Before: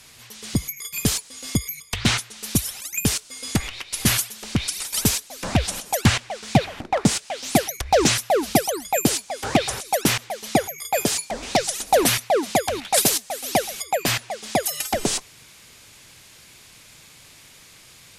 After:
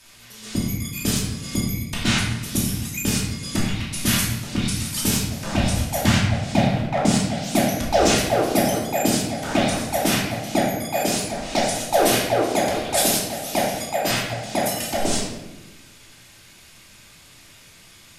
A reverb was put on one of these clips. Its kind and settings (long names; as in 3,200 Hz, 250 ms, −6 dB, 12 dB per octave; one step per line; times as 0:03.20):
rectangular room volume 450 cubic metres, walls mixed, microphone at 2.7 metres
level −6.5 dB